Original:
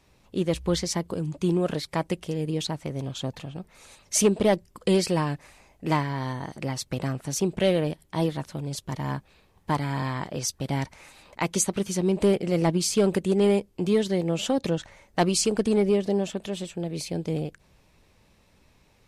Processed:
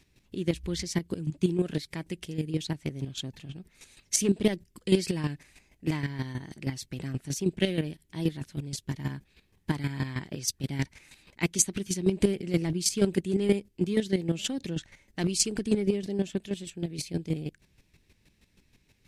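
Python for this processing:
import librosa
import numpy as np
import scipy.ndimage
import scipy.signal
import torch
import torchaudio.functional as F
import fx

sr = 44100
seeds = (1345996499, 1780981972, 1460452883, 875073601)

y = fx.band_shelf(x, sr, hz=800.0, db=-10.5, octaves=1.7)
y = fx.chopper(y, sr, hz=6.3, depth_pct=65, duty_pct=20)
y = y * librosa.db_to_amplitude(2.5)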